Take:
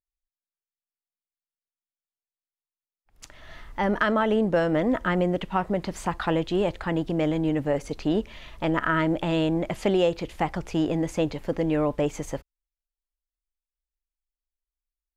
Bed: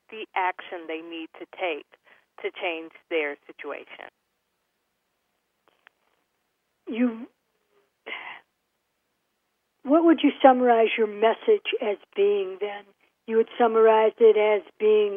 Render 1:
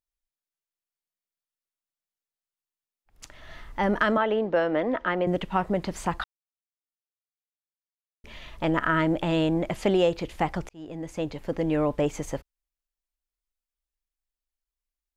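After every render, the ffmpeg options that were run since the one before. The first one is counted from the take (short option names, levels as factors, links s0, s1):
-filter_complex "[0:a]asettb=1/sr,asplit=3[s0][s1][s2];[s0]atrim=end=4.174[s3];[s1]atrim=start=4.17:end=5.27,asetpts=PTS-STARTPTS,afade=t=in:d=0.004:c=qsin,afade=t=out:st=1.096:d=0.004:c=qsin,acrossover=split=280 4600:gain=0.224 1 0.0631[s4][s5][s6];[s4][s5][s6]amix=inputs=3:normalize=0[s7];[s2]atrim=start=5.266[s8];[s3][s7]acrossfade=d=0.004:c1=hsin:c2=qsin[s9];[s9][s8]acrossfade=d=0.004:c1=qsin:c2=hsin,asplit=4[s10][s11][s12][s13];[s10]atrim=end=6.24,asetpts=PTS-STARTPTS,afade=t=out:st=6.236:d=0.004:c=hsin[s14];[s11]atrim=start=6.24:end=8.24,asetpts=PTS-STARTPTS,volume=0[s15];[s12]atrim=start=8.24:end=10.69,asetpts=PTS-STARTPTS,afade=t=in:d=0.004:c=hsin,afade=t=out:st=2.446:d=0.004:c=hsin[s16];[s13]atrim=start=10.69,asetpts=PTS-STARTPTS,afade=t=in:d=1.43:c=qsin[s17];[s14][s15][s16][s17]concat=n=4:v=0:a=1"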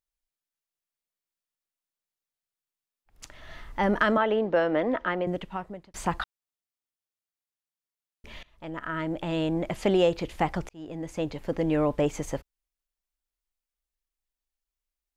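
-filter_complex "[0:a]asplit=3[s0][s1][s2];[s0]atrim=end=5.94,asetpts=PTS-STARTPTS,afade=t=out:st=4.91:d=1.03[s3];[s1]atrim=start=5.94:end=8.43,asetpts=PTS-STARTPTS,afade=t=in:d=0.004:c=hsin,afade=t=out:st=2.486:d=0.004:c=hsin:silence=0.0749894[s4];[s2]atrim=start=8.43,asetpts=PTS-STARTPTS,afade=t=in:d=1.58:silence=0.0749894[s5];[s3][s4][s5]concat=n=3:v=0:a=1"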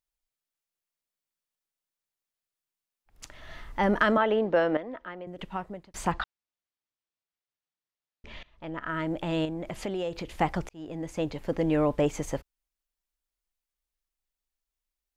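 -filter_complex "[0:a]asettb=1/sr,asplit=3[s0][s1][s2];[s0]atrim=end=6.124[s3];[s1]atrim=start=6.12:end=8.87,asetpts=PTS-STARTPTS,afade=t=in:d=0.004:c=qsin,afade=t=out:st=2.746:d=0.004:c=qsin,lowpass=5000[s4];[s2]atrim=start=8.866[s5];[s3][s4]acrossfade=d=0.004:c1=hsin:c2=qsin[s6];[s6][s5]acrossfade=d=0.004:c1=qsin:c2=hsin,asettb=1/sr,asplit=3[s7][s8][s9];[s7]atrim=end=9.454[s10];[s8]atrim=start=9.45:end=10.31,asetpts=PTS-STARTPTS,afade=t=in:d=0.004:c=qsin,afade=t=out:st=0.856:d=0.004:c=qsin,acompressor=threshold=0.0224:ratio=2.5:attack=3.2:release=140:knee=1:detection=peak[s11];[s9]atrim=start=10.306[s12];[s10][s11]acrossfade=d=0.004:c1=hsin:c2=qsin[s13];[s13][s12]acrossfade=d=0.004:c1=qsin:c2=hsin,asplit=3[s14][s15][s16];[s14]atrim=end=4.772[s17];[s15]atrim=start=4.768:end=5.392,asetpts=PTS-STARTPTS,volume=0.251[s18];[s16]atrim=start=5.388[s19];[s17][s18]acrossfade=d=0.004:c1=hsin:c2=hsin[s20];[s20][s19]acrossfade=d=0.004:c1=hsin:c2=hsin"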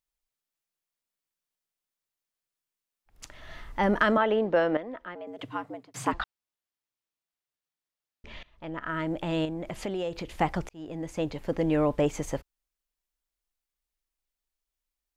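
-filter_complex "[0:a]asettb=1/sr,asplit=3[s0][s1][s2];[s0]atrim=end=5.154[s3];[s1]atrim=start=5.15:end=6.13,asetpts=PTS-STARTPTS,afade=t=in:d=0.004:c=qsin,afade=t=out:st=0.976:d=0.004:c=qsin,afreqshift=100[s4];[s2]atrim=start=6.126[s5];[s3][s4]acrossfade=d=0.004:c1=hsin:c2=qsin[s6];[s6][s5]acrossfade=d=0.004:c1=qsin:c2=hsin"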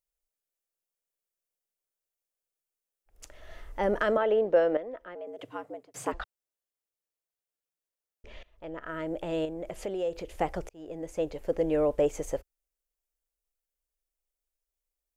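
-af "equalizer=f=125:t=o:w=1:g=-10,equalizer=f=250:t=o:w=1:g=-7,equalizer=f=500:t=o:w=1:g=6,equalizer=f=1000:t=o:w=1:g=-7,equalizer=f=2000:t=o:w=1:g=-4,equalizer=f=4000:t=o:w=1:g=-7"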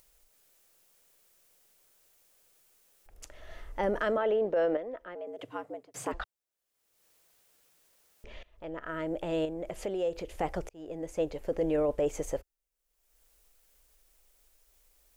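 -af "acompressor=mode=upward:threshold=0.00501:ratio=2.5,alimiter=limit=0.0891:level=0:latency=1:release=11"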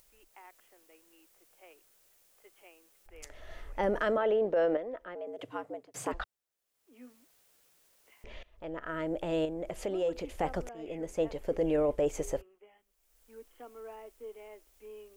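-filter_complex "[1:a]volume=0.0355[s0];[0:a][s0]amix=inputs=2:normalize=0"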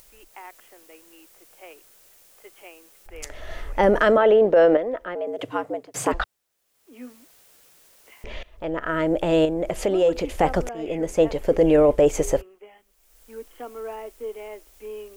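-af "volume=3.98"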